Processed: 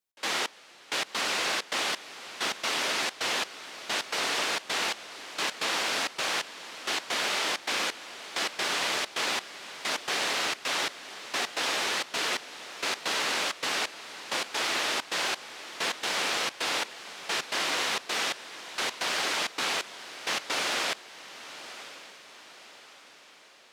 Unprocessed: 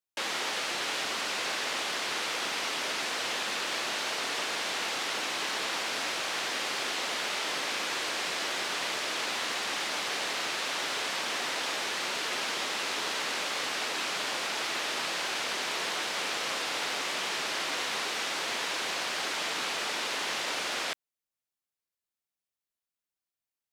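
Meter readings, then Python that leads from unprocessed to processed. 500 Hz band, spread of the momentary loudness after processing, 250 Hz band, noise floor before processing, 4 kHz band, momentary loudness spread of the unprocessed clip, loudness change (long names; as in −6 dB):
+1.0 dB, 14 LU, +1.0 dB, below −85 dBFS, +1.0 dB, 0 LU, +1.0 dB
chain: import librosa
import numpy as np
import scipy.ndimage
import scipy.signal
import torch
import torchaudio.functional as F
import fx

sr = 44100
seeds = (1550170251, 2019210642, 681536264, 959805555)

y = fx.step_gate(x, sr, bpm=131, pattern='x.xx....x.xxx', floor_db=-24.0, edge_ms=4.5)
y = fx.echo_diffused(y, sr, ms=1025, feedback_pct=49, wet_db=-14)
y = y * 10.0 ** (3.5 / 20.0)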